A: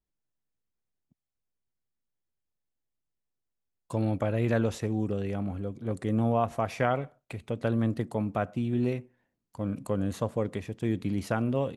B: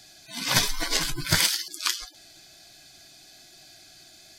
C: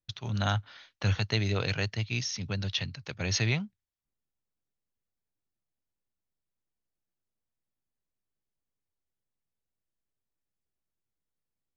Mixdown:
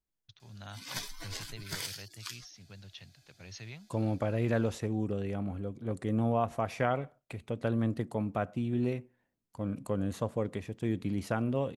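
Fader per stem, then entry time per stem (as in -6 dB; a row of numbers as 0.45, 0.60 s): -3.0, -16.5, -18.0 dB; 0.00, 0.40, 0.20 s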